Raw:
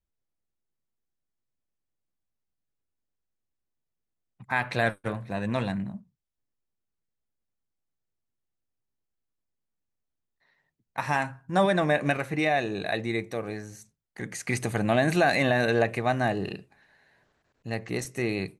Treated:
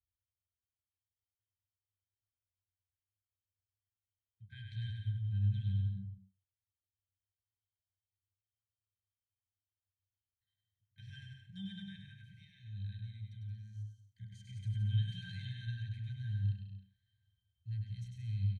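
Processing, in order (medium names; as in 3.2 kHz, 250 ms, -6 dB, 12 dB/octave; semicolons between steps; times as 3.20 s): 12.02–14.58 s: compression, threshold -29 dBFS, peak gain reduction 9.5 dB; elliptic band-stop 120–3000 Hz, stop band 60 dB; peaking EQ 230 Hz -5 dB 2.2 oct; pitch-class resonator G, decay 0.17 s; bouncing-ball echo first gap 100 ms, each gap 0.75×, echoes 5; trim +9.5 dB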